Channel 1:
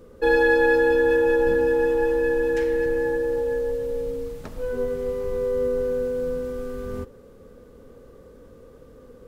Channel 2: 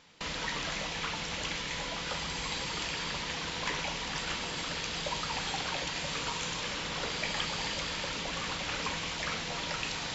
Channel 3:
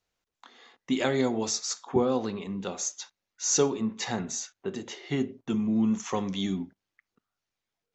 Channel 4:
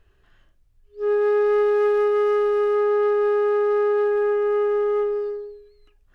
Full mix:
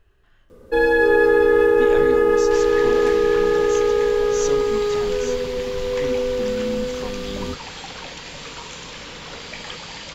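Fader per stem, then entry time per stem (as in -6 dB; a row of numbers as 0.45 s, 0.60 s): +1.5 dB, -0.5 dB, -5.0 dB, 0.0 dB; 0.50 s, 2.30 s, 0.90 s, 0.00 s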